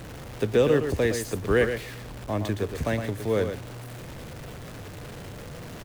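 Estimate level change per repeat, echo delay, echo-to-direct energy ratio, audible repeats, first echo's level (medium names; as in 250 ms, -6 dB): no regular repeats, 115 ms, -7.5 dB, 1, -7.5 dB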